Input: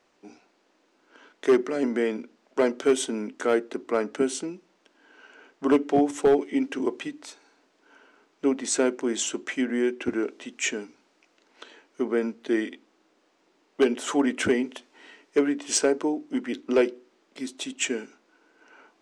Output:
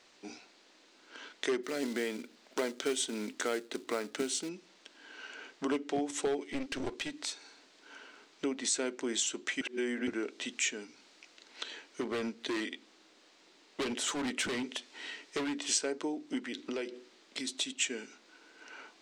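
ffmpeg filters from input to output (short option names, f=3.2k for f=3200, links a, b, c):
-filter_complex "[0:a]asettb=1/sr,asplit=3[a][b][c];[a]atrim=end=1.634[d];[b]atrim=start=1.63:end=4.49,asetpts=PTS-STARTPTS,afade=t=in:d=0.004:c=qsin,afade=t=out:st=2.856:d=0.004:c=qsin,acrusher=bits=5:mode=log:mix=0:aa=0.000001[e];[c]atrim=start=4.486[f];[d][e]acrossfade=d=0.004:c1=hsin:c2=qsin[g];[g][f]acrossfade=d=0.004:c1=qsin:c2=hsin,asettb=1/sr,asplit=3[h][i][j];[h]atrim=end=6.454[k];[i]atrim=start=6.45:end=7.15,asetpts=PTS-STARTPTS,afade=t=in:d=0.004:c=qsin,afade=t=out:st=0.696:d=0.004:c=qsin,aeval=exprs='clip(val(0),-1,0.0168)':c=same[l];[j]atrim=start=7.146[m];[k][l]acrossfade=d=0.004:c1=hsin:c2=qsin[n];[n][m]acrossfade=d=0.004:c1=qsin:c2=hsin,asettb=1/sr,asplit=3[o][p][q];[o]atrim=end=12.014[r];[p]atrim=start=12.01:end=15.72,asetpts=PTS-STARTPTS,afade=t=in:d=0.004:c=qsin,afade=t=out:st=3.706:d=0.004:c=qsin,volume=25dB,asoftclip=hard,volume=-25dB[s];[q]atrim=start=15.716[t];[r][s]acrossfade=d=0.004:c1=hsin:c2=qsin[u];[u][t]acrossfade=d=0.004:c1=qsin:c2=hsin,asettb=1/sr,asplit=3[v][w][x];[v]atrim=end=16.394[y];[w]atrim=start=16.39:end=17.48,asetpts=PTS-STARTPTS,afade=t=in:d=0.004:c=qsin,afade=t=out:st=1.086:d=0.004:c=qsin,acompressor=threshold=-35dB:ratio=2.5:attack=3.2:release=140:knee=1:detection=peak[z];[x]atrim=start=17.476[aa];[y][z]acrossfade=d=0.004:c1=hsin:c2=qsin[ab];[ab][aa]acrossfade=d=0.004:c1=qsin:c2=hsin,asplit=3[ac][ad][ae];[ac]atrim=end=9.612[af];[ad]atrim=start=9.608:end=10.072,asetpts=PTS-STARTPTS,areverse[ag];[ae]atrim=start=10.068[ah];[af][ag]acrossfade=d=0.004:c1=hsin:c2=hsin[ai];[ai][ah]acrossfade=d=0.004:c1=hsin:c2=hsin,equalizer=f=2k:t=o:w=1:g=4,equalizer=f=4k:t=o:w=1:g=10,equalizer=f=8k:t=o:w=1:g=7,acompressor=threshold=-36dB:ratio=2.5"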